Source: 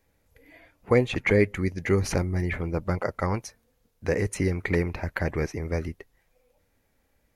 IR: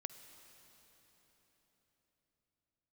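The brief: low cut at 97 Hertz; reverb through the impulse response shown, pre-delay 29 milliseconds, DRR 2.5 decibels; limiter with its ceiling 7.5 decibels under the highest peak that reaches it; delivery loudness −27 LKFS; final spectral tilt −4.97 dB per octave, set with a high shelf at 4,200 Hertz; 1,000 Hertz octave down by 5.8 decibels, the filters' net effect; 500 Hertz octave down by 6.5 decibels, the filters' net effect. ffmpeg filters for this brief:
-filter_complex "[0:a]highpass=97,equalizer=frequency=500:width_type=o:gain=-7,equalizer=frequency=1000:width_type=o:gain=-6,highshelf=frequency=4200:gain=5,alimiter=limit=-17dB:level=0:latency=1,asplit=2[link_01][link_02];[1:a]atrim=start_sample=2205,adelay=29[link_03];[link_02][link_03]afir=irnorm=-1:irlink=0,volume=0.5dB[link_04];[link_01][link_04]amix=inputs=2:normalize=0,volume=3dB"

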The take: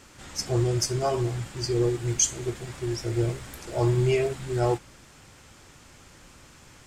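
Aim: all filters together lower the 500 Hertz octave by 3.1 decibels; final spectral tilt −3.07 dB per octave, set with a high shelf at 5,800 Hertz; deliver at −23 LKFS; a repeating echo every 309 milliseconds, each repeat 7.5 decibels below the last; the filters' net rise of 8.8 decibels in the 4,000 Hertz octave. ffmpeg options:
ffmpeg -i in.wav -af "equalizer=frequency=500:width_type=o:gain=-5,equalizer=frequency=4000:width_type=o:gain=8.5,highshelf=frequency=5800:gain=7.5,aecho=1:1:309|618|927|1236|1545:0.422|0.177|0.0744|0.0312|0.0131,volume=0.5dB" out.wav

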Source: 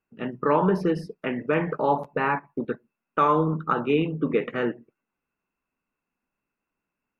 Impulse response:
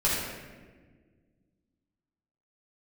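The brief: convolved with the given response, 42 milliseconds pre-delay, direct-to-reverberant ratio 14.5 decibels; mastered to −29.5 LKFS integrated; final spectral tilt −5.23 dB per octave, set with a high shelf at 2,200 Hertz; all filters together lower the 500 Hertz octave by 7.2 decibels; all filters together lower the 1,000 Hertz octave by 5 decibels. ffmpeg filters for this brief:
-filter_complex "[0:a]equalizer=frequency=500:width_type=o:gain=-8,equalizer=frequency=1000:width_type=o:gain=-5.5,highshelf=frequency=2200:gain=6,asplit=2[link_01][link_02];[1:a]atrim=start_sample=2205,adelay=42[link_03];[link_02][link_03]afir=irnorm=-1:irlink=0,volume=-26.5dB[link_04];[link_01][link_04]amix=inputs=2:normalize=0,volume=-1dB"

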